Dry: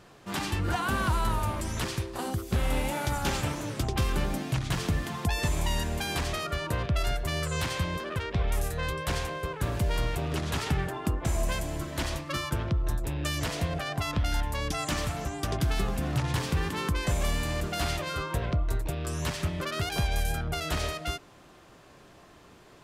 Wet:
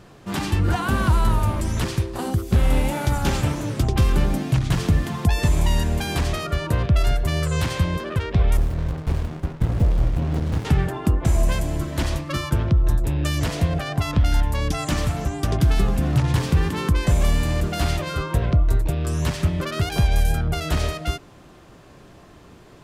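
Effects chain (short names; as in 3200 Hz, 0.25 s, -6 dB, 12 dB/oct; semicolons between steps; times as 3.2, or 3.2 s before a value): low shelf 380 Hz +7.5 dB; 8.57–10.65 running maximum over 65 samples; gain +3 dB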